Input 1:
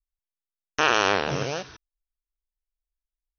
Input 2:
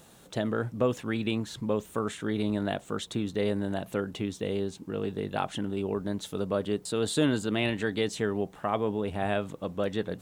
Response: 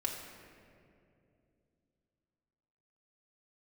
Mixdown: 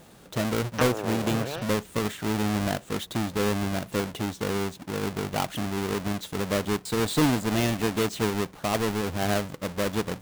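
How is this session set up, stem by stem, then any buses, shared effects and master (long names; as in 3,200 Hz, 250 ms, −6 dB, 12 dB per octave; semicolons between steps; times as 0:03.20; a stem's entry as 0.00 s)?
−4.0 dB, 0.00 s, no send, treble cut that deepens with the level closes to 530 Hz, closed at −18 dBFS
−1.5 dB, 0.00 s, no send, each half-wave held at its own peak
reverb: not used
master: no processing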